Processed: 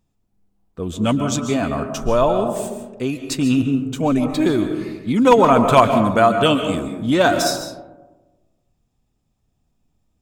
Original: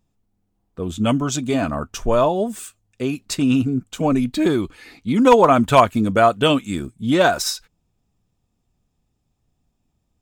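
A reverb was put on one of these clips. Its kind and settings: algorithmic reverb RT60 1.2 s, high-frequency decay 0.3×, pre-delay 100 ms, DRR 7 dB

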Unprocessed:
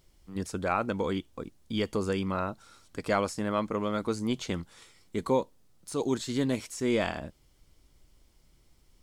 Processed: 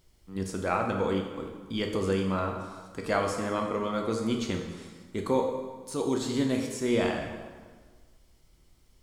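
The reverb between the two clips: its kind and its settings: plate-style reverb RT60 1.5 s, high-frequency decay 0.75×, DRR 2 dB; trim -1 dB

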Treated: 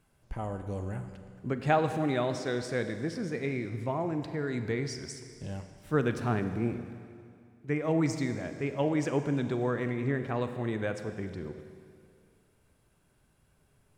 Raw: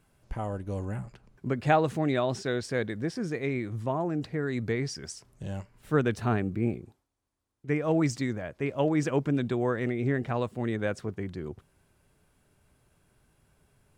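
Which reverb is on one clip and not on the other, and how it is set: Schroeder reverb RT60 2.3 s, combs from 33 ms, DRR 8 dB; trim -2.5 dB

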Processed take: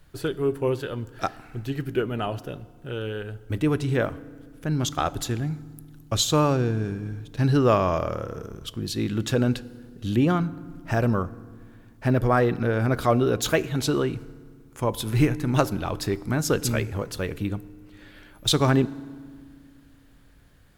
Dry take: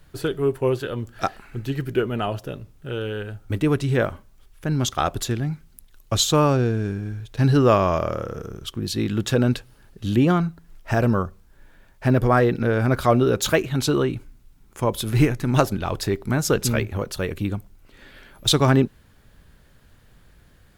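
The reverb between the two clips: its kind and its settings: FDN reverb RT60 1.8 s, low-frequency decay 1.55×, high-frequency decay 0.65×, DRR 17.5 dB; trim -3 dB

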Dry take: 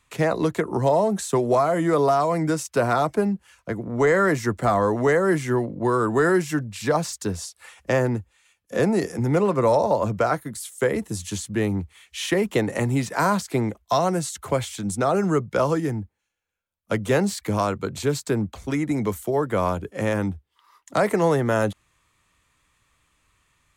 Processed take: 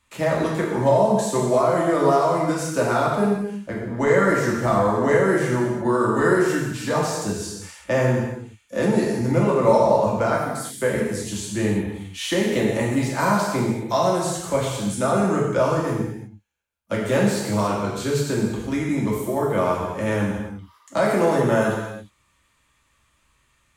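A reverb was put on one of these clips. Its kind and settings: gated-style reverb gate 390 ms falling, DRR -4.5 dB; trim -4 dB

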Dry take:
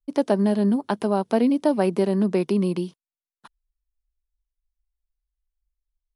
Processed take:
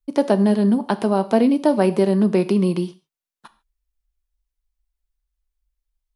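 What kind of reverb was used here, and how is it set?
gated-style reverb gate 170 ms falling, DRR 11.5 dB; trim +3.5 dB

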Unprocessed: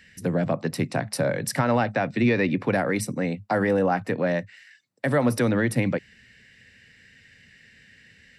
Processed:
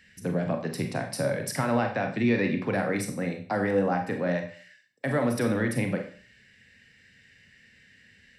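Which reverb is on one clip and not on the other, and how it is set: Schroeder reverb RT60 0.44 s, combs from 30 ms, DRR 4 dB; trim -5 dB

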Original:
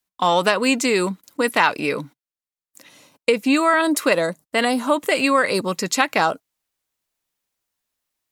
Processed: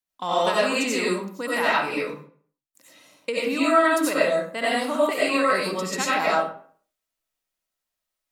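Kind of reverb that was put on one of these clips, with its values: algorithmic reverb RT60 0.5 s, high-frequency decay 0.7×, pre-delay 50 ms, DRR -7.5 dB; trim -11.5 dB

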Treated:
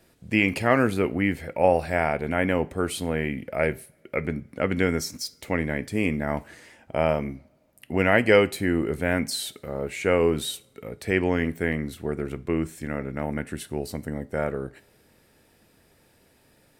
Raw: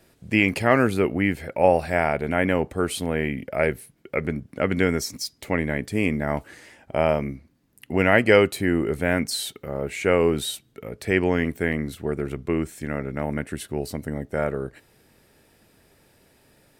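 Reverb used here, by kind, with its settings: two-slope reverb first 0.36 s, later 2.4 s, from -27 dB, DRR 15 dB; trim -2 dB

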